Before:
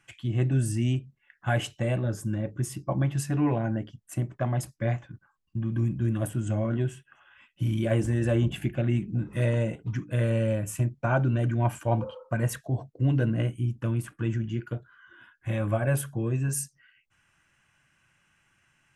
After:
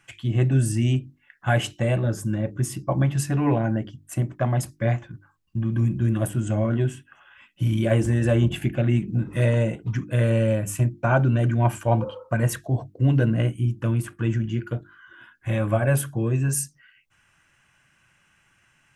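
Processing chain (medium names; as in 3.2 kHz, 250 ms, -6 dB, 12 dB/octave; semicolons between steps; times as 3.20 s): short-mantissa float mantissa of 8-bit; hum notches 50/100/150/200/250/300/350 Hz; trim +5 dB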